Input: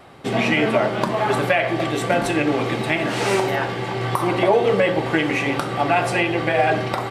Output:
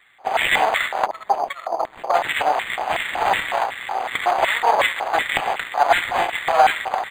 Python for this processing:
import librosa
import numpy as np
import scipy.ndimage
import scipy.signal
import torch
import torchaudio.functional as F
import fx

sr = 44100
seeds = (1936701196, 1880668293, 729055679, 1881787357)

y = fx.spec_box(x, sr, start_s=1.06, length_s=1.08, low_hz=700.0, high_hz=5700.0, gain_db=-26)
y = fx.cheby_harmonics(y, sr, harmonics=(6, 7), levels_db=(-9, -27), full_scale_db=-4.5)
y = fx.filter_lfo_highpass(y, sr, shape='square', hz=2.7, low_hz=760.0, high_hz=2000.0, q=4.9)
y = np.interp(np.arange(len(y)), np.arange(len(y))[::8], y[::8])
y = y * 10.0 ** (-4.5 / 20.0)